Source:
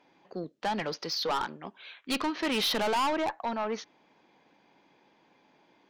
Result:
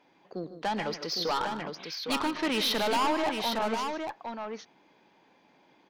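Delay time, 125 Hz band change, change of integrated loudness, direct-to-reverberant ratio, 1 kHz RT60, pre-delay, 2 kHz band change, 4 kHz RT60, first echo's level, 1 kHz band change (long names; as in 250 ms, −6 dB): 115 ms, +1.5 dB, +0.5 dB, no reverb audible, no reverb audible, no reverb audible, +1.5 dB, no reverb audible, −16.0 dB, +1.5 dB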